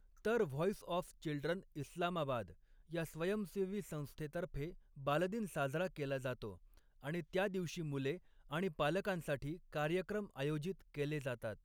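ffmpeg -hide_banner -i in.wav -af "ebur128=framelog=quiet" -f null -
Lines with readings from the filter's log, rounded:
Integrated loudness:
  I:         -41.0 LUFS
  Threshold: -51.2 LUFS
Loudness range:
  LRA:         1.8 LU
  Threshold: -61.4 LUFS
  LRA low:   -42.3 LUFS
  LRA high:  -40.5 LUFS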